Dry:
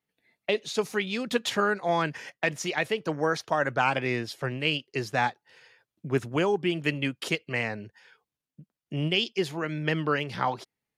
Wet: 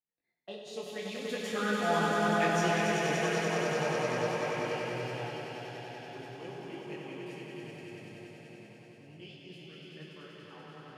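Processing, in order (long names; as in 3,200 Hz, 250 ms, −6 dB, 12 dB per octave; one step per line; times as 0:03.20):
source passing by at 0:02.33, 6 m/s, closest 4.2 metres
auto-filter notch saw down 0.71 Hz 790–3,900 Hz
echo that builds up and dies away 96 ms, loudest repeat 5, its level −4 dB
on a send at −2 dB: convolution reverb, pre-delay 3 ms
on the sum: micro pitch shift up and down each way 15 cents
level −3 dB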